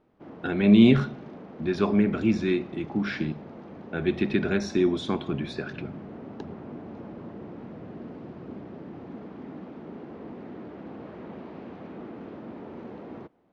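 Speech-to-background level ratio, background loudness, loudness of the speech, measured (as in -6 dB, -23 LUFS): 17.5 dB, -42.0 LUFS, -24.5 LUFS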